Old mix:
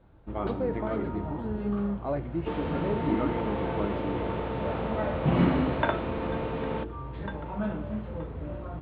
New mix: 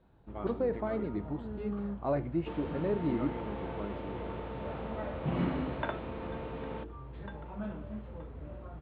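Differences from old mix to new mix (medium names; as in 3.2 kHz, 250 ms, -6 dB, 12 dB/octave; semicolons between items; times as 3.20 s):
first sound -7.0 dB; second sound -8.5 dB; reverb: off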